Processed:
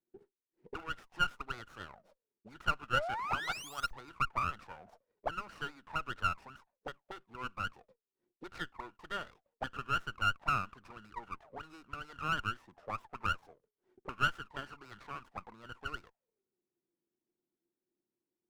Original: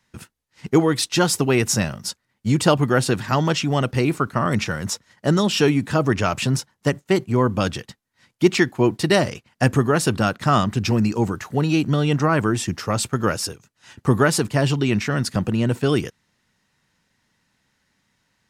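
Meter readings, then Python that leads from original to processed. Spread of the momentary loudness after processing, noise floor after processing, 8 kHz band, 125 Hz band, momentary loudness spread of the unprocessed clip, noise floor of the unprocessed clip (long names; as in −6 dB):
16 LU, below −85 dBFS, −28.0 dB, −27.0 dB, 7 LU, −72 dBFS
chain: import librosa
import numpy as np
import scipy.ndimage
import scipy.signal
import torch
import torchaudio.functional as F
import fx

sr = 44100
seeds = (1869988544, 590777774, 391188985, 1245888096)

y = fx.auto_wah(x, sr, base_hz=350.0, top_hz=1400.0, q=15.0, full_db=-16.0, direction='up')
y = fx.spec_paint(y, sr, seeds[0], shape='rise', start_s=2.93, length_s=0.99, low_hz=490.0, high_hz=6400.0, level_db=-37.0)
y = fx.running_max(y, sr, window=9)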